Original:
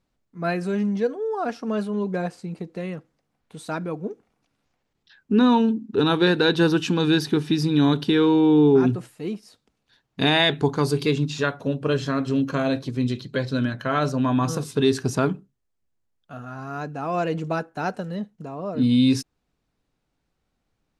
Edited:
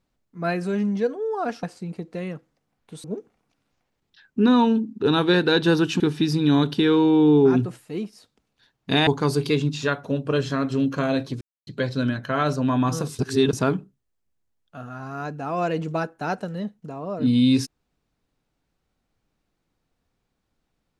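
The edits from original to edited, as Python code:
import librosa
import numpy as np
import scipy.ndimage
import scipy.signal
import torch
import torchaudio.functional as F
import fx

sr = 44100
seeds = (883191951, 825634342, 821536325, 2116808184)

y = fx.edit(x, sr, fx.cut(start_s=1.63, length_s=0.62),
    fx.cut(start_s=3.66, length_s=0.31),
    fx.cut(start_s=6.93, length_s=0.37),
    fx.cut(start_s=10.37, length_s=0.26),
    fx.silence(start_s=12.97, length_s=0.26),
    fx.reverse_span(start_s=14.75, length_s=0.34), tone=tone)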